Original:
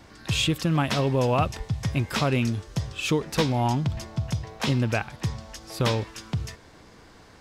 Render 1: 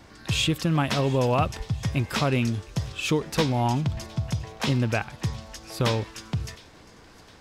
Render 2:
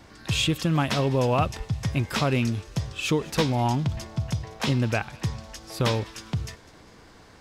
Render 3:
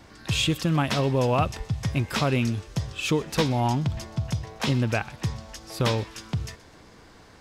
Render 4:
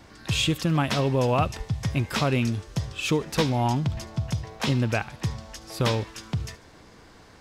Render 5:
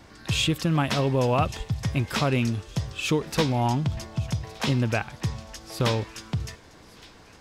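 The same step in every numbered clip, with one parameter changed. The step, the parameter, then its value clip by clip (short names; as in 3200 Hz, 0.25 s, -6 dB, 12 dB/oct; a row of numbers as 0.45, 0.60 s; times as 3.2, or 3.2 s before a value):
thin delay, time: 711, 203, 126, 73, 1166 ms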